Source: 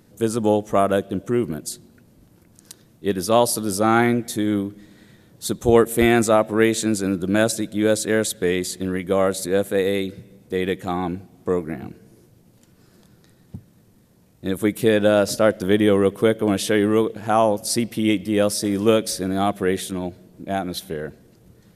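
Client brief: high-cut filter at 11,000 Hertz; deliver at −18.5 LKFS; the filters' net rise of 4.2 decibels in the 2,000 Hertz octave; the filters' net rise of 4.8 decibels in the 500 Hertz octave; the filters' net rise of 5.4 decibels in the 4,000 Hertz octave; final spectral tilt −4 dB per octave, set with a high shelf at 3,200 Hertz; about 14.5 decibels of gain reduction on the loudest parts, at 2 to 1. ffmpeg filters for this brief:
ffmpeg -i in.wav -af "lowpass=11000,equalizer=frequency=500:width_type=o:gain=5.5,equalizer=frequency=2000:width_type=o:gain=4.5,highshelf=frequency=3200:gain=-5,equalizer=frequency=4000:width_type=o:gain=9,acompressor=threshold=-33dB:ratio=2,volume=10.5dB" out.wav

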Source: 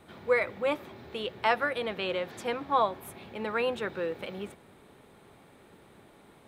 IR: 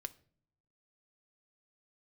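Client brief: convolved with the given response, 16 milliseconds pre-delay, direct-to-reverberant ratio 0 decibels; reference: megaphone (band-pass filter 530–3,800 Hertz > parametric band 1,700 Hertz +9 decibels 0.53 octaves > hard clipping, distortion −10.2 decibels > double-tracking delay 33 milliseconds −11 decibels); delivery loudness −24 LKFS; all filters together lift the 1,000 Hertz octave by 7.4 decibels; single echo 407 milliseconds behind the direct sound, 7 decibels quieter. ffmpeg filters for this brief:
-filter_complex "[0:a]equalizer=frequency=1000:width_type=o:gain=8,aecho=1:1:407:0.447,asplit=2[link_01][link_02];[1:a]atrim=start_sample=2205,adelay=16[link_03];[link_02][link_03]afir=irnorm=-1:irlink=0,volume=3.5dB[link_04];[link_01][link_04]amix=inputs=2:normalize=0,highpass=530,lowpass=3800,equalizer=frequency=1700:width_type=o:width=0.53:gain=9,asoftclip=type=hard:threshold=-15dB,asplit=2[link_05][link_06];[link_06]adelay=33,volume=-11dB[link_07];[link_05][link_07]amix=inputs=2:normalize=0,volume=-0.5dB"

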